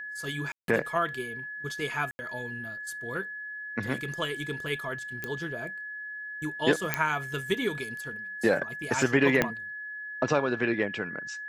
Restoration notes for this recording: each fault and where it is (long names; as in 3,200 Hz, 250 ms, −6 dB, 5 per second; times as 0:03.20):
whistle 1,700 Hz −36 dBFS
0:00.52–0:00.68: drop-out 162 ms
0:02.11–0:02.19: drop-out 80 ms
0:05.24: click −18 dBFS
0:06.94: click −9 dBFS
0:09.42: click −9 dBFS